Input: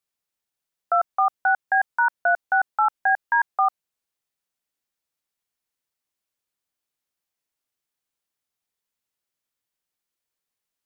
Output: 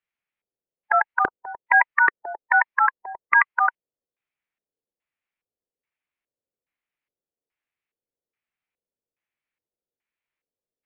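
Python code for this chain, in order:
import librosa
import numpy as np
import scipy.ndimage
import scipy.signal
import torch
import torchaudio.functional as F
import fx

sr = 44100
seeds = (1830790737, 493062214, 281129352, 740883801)

y = fx.filter_lfo_lowpass(x, sr, shape='square', hz=1.2, low_hz=390.0, high_hz=1800.0, q=3.0)
y = fx.formant_shift(y, sr, semitones=4)
y = y * 10.0 ** (-2.0 / 20.0)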